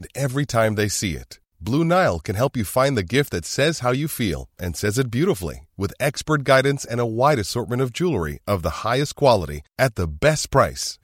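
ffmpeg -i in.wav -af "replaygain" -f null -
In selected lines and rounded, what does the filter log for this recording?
track_gain = +0.8 dB
track_peak = 0.553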